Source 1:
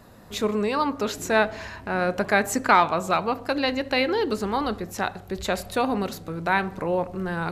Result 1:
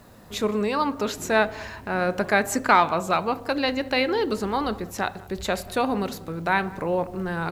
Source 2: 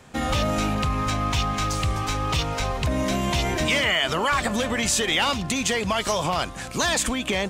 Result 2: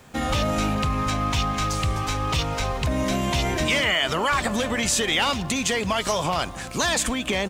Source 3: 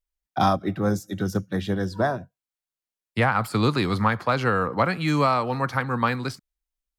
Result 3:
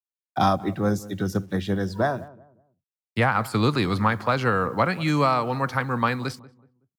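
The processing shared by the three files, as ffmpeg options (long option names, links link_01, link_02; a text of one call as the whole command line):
ffmpeg -i in.wav -filter_complex "[0:a]acrusher=bits=9:mix=0:aa=0.000001,asplit=2[link_01][link_02];[link_02]adelay=187,lowpass=frequency=970:poles=1,volume=-18dB,asplit=2[link_03][link_04];[link_04]adelay=187,lowpass=frequency=970:poles=1,volume=0.34,asplit=2[link_05][link_06];[link_06]adelay=187,lowpass=frequency=970:poles=1,volume=0.34[link_07];[link_01][link_03][link_05][link_07]amix=inputs=4:normalize=0" out.wav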